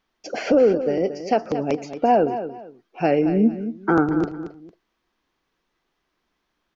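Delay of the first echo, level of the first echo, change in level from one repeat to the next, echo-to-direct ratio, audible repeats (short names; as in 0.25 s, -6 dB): 0.227 s, -11.0 dB, -11.5 dB, -10.5 dB, 2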